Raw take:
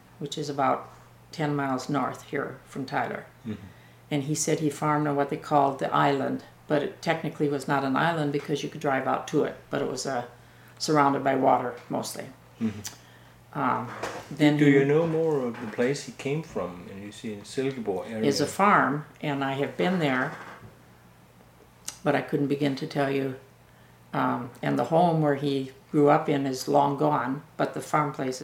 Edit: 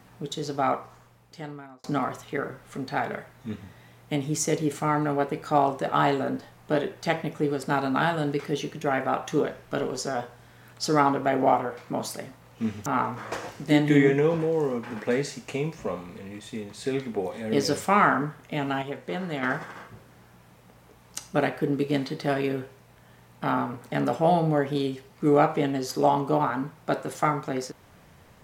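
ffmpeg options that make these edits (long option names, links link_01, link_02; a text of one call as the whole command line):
ffmpeg -i in.wav -filter_complex "[0:a]asplit=5[link_01][link_02][link_03][link_04][link_05];[link_01]atrim=end=1.84,asetpts=PTS-STARTPTS,afade=type=out:start_time=0.59:duration=1.25[link_06];[link_02]atrim=start=1.84:end=12.862,asetpts=PTS-STARTPTS,afade=type=in:duration=0.004:curve=hsin[link_07];[link_03]atrim=start=13.568:end=19.532[link_08];[link_04]atrim=start=19.528:end=20.142,asetpts=PTS-STARTPTS,volume=-6.5dB[link_09];[link_05]atrim=start=20.138[link_10];[link_06][link_07]concat=n=2:v=0:a=1[link_11];[link_11][link_08]acrossfade=duration=0.004:curve1=hsin:curve2=hsin[link_12];[link_12][link_09]acrossfade=duration=0.004:curve1=hsin:curve2=hsin[link_13];[link_13][link_10]acrossfade=duration=0.004:curve1=hsin:curve2=hsin" out.wav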